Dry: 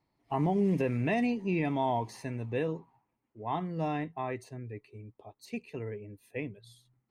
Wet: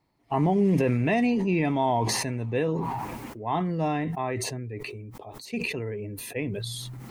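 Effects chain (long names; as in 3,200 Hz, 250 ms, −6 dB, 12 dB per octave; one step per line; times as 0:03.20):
level that may fall only so fast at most 20 dB per second
level +5 dB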